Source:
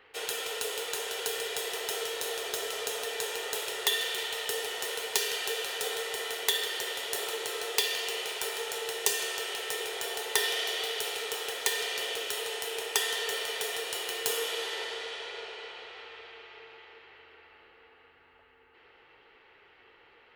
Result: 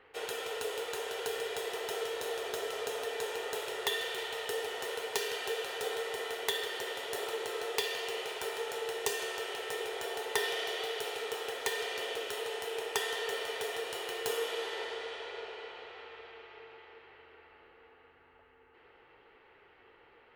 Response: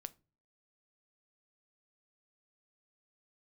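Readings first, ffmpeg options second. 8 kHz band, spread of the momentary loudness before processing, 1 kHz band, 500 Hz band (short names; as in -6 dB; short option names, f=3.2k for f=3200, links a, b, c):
-9.0 dB, 10 LU, -0.5 dB, +0.5 dB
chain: -af "highshelf=f=2.3k:g=-11,volume=1dB"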